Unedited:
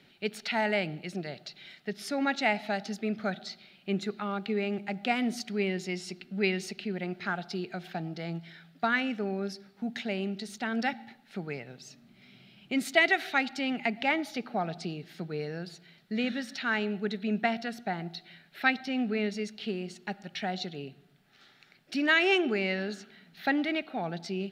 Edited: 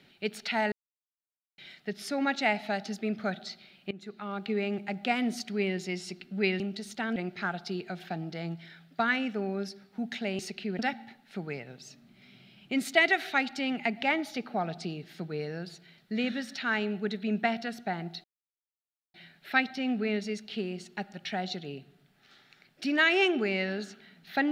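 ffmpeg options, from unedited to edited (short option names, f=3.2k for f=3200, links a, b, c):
-filter_complex "[0:a]asplit=9[a][b][c][d][e][f][g][h][i];[a]atrim=end=0.72,asetpts=PTS-STARTPTS,afade=t=out:st=0.716:d=0.004:c=hsin[j];[b]atrim=start=0.72:end=1.58,asetpts=PTS-STARTPTS,volume=0[k];[c]atrim=start=1.58:end=3.91,asetpts=PTS-STARTPTS,afade=t=in:d=0.004:c=hsin,afade=t=out:st=2.326:d=0.004:c=hsin:silence=0.0944061[l];[d]atrim=start=3.91:end=6.602,asetpts=PTS-STARTPTS,afade=t=in:d=0.6:silence=0.0944061[m];[e]atrim=start=10.228:end=10.792[n];[f]atrim=start=6.998:end=10.232[o];[g]atrim=start=6.598:end=7.002[p];[h]atrim=start=10.788:end=18.24,asetpts=PTS-STARTPTS,afade=t=out:st=7.448:d=0.004:c=hsin,apad=pad_dur=0.9[q];[i]atrim=start=18.24,asetpts=PTS-STARTPTS,afade=t=in:d=0.004:c=hsin[r];[j][k][l][m]concat=n=4:v=0:a=1[s];[s][n]acrossfade=d=0.004:c1=hsin:c2=hsin[t];[t][o]acrossfade=d=0.004:c1=hsin:c2=hsin[u];[u][p]acrossfade=d=0.004:c1=hsin:c2=hsin[v];[q][r]concat=n=2:v=0:a=1[w];[v][w]acrossfade=d=0.004:c1=hsin:c2=hsin"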